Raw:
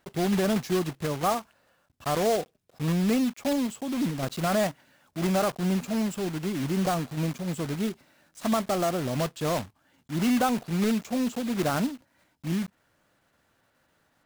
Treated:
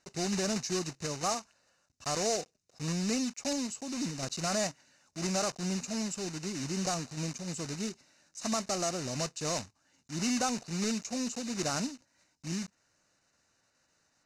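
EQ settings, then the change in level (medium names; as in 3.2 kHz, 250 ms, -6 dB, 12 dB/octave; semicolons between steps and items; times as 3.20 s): Butterworth band-stop 3.3 kHz, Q 6.4; resonant low-pass 6.3 kHz, resonance Q 3.1; treble shelf 3.2 kHz +8 dB; -8.0 dB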